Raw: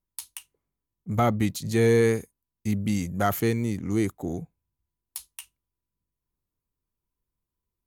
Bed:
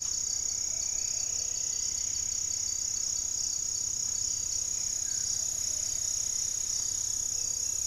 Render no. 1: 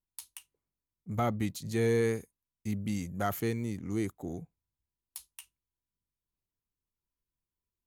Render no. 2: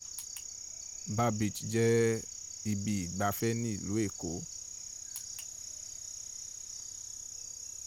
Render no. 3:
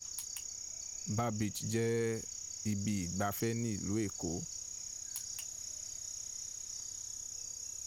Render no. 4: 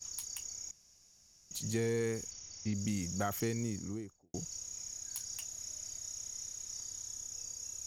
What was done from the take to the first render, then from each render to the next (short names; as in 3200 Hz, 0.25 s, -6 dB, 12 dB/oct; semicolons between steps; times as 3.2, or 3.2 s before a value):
gain -7.5 dB
add bed -12.5 dB
compressor, threshold -30 dBFS, peak gain reduction 6.5 dB
0.71–1.51 room tone; 2.31–2.74 steep low-pass 6200 Hz 48 dB/oct; 3.58–4.34 studio fade out